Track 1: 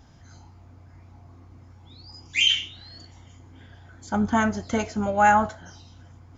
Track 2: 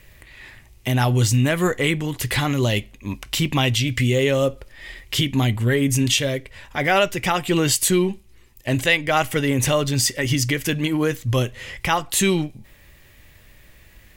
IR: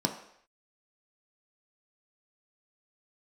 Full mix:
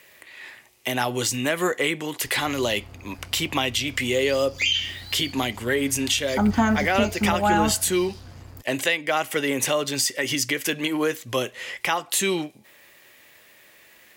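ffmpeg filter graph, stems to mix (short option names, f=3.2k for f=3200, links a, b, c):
-filter_complex "[0:a]acrusher=bits=7:mix=0:aa=0.5,equalizer=f=4.7k:w=7:g=11.5,adelay=2250,volume=3dB[a];[1:a]highpass=380,volume=1.5dB[b];[a][b]amix=inputs=2:normalize=0,lowshelf=f=62:g=6,acrossover=split=330[c][d];[d]acompressor=threshold=-21dB:ratio=3[e];[c][e]amix=inputs=2:normalize=0"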